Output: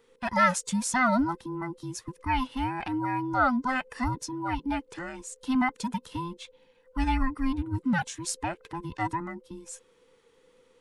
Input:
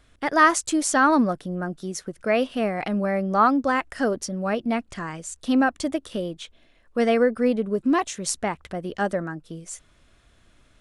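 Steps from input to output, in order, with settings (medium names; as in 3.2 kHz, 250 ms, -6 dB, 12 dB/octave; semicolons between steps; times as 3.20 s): every band turned upside down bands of 500 Hz; trim -5.5 dB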